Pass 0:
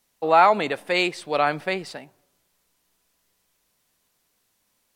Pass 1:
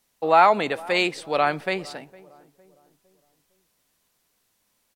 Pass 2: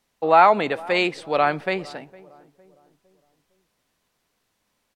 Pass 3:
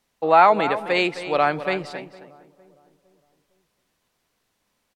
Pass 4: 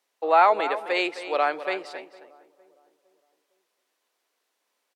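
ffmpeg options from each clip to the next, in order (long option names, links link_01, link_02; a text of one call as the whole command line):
ffmpeg -i in.wav -filter_complex "[0:a]asplit=2[link_01][link_02];[link_02]adelay=458,lowpass=frequency=910:poles=1,volume=-20dB,asplit=2[link_03][link_04];[link_04]adelay=458,lowpass=frequency=910:poles=1,volume=0.47,asplit=2[link_05][link_06];[link_06]adelay=458,lowpass=frequency=910:poles=1,volume=0.47,asplit=2[link_07][link_08];[link_08]adelay=458,lowpass=frequency=910:poles=1,volume=0.47[link_09];[link_01][link_03][link_05][link_07][link_09]amix=inputs=5:normalize=0" out.wav
ffmpeg -i in.wav -af "lowpass=frequency=3500:poles=1,volume=2dB" out.wav
ffmpeg -i in.wav -filter_complex "[0:a]asplit=2[link_01][link_02];[link_02]adelay=262.4,volume=-12dB,highshelf=frequency=4000:gain=-5.9[link_03];[link_01][link_03]amix=inputs=2:normalize=0" out.wav
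ffmpeg -i in.wav -af "highpass=frequency=340:width=0.5412,highpass=frequency=340:width=1.3066,volume=-3.5dB" out.wav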